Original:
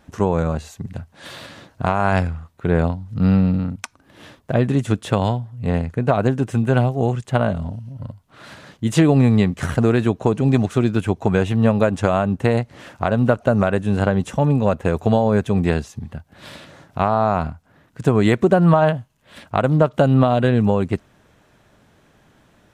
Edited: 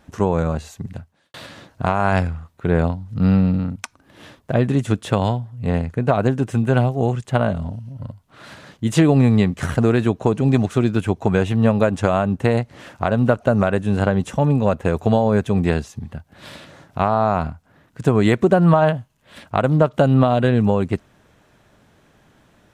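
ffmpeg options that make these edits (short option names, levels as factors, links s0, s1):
-filter_complex "[0:a]asplit=2[s0][s1];[s0]atrim=end=1.34,asetpts=PTS-STARTPTS,afade=t=out:st=0.92:d=0.42:c=qua[s2];[s1]atrim=start=1.34,asetpts=PTS-STARTPTS,afade=t=in:d=0.004:c=hsin[s3];[s2][s3]concat=n=2:v=0:a=1"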